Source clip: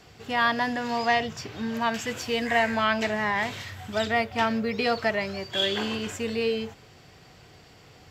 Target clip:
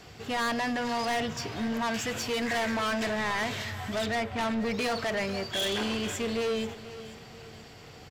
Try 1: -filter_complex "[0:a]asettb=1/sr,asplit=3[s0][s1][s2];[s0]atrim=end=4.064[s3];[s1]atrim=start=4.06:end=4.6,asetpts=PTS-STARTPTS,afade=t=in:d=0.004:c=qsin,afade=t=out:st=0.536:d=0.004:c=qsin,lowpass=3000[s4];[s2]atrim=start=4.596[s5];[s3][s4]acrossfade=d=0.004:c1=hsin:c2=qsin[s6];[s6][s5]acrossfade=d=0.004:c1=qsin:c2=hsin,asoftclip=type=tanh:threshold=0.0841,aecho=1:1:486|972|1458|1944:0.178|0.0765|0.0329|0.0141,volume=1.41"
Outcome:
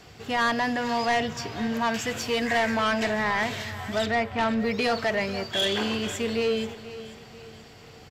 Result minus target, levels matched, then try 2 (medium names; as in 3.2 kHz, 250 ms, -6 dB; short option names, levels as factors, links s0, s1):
saturation: distortion -6 dB
-filter_complex "[0:a]asettb=1/sr,asplit=3[s0][s1][s2];[s0]atrim=end=4.064[s3];[s1]atrim=start=4.06:end=4.6,asetpts=PTS-STARTPTS,afade=t=in:d=0.004:c=qsin,afade=t=out:st=0.536:d=0.004:c=qsin,lowpass=3000[s4];[s2]atrim=start=4.596[s5];[s3][s4]acrossfade=d=0.004:c1=hsin:c2=qsin[s6];[s6][s5]acrossfade=d=0.004:c1=qsin:c2=hsin,asoftclip=type=tanh:threshold=0.0335,aecho=1:1:486|972|1458|1944:0.178|0.0765|0.0329|0.0141,volume=1.41"